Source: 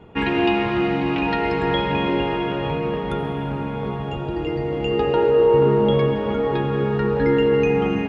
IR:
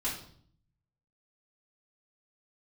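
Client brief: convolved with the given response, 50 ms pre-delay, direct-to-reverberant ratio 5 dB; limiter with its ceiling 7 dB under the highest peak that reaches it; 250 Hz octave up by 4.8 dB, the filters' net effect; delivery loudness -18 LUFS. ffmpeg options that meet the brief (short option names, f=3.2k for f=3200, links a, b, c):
-filter_complex "[0:a]equalizer=f=250:t=o:g=6.5,alimiter=limit=-11dB:level=0:latency=1,asplit=2[a][b];[1:a]atrim=start_sample=2205,adelay=50[c];[b][c]afir=irnorm=-1:irlink=0,volume=-9.5dB[d];[a][d]amix=inputs=2:normalize=0,volume=1dB"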